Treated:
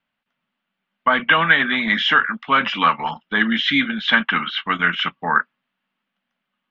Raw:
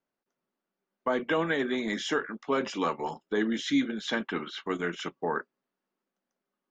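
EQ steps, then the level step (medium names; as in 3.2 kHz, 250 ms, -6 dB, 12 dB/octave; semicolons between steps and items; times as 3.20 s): dynamic bell 1.3 kHz, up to +7 dB, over -44 dBFS, Q 1.2; FFT filter 230 Hz 0 dB, 380 Hz -16 dB, 620 Hz -5 dB, 3.1 kHz +9 dB, 8 kHz -26 dB; +9.0 dB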